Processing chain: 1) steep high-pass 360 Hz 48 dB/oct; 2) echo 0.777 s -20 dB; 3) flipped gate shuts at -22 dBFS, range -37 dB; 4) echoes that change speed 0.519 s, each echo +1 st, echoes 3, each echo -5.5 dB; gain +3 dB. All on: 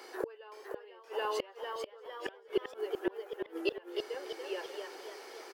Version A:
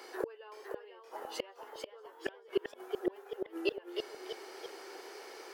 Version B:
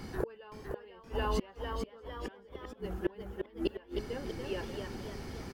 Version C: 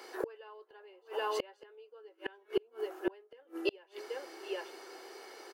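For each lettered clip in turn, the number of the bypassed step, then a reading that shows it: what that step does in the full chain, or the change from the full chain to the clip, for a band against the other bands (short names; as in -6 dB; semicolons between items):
2, crest factor change +2.0 dB; 1, 250 Hz band +5.5 dB; 4, momentary loudness spread change +8 LU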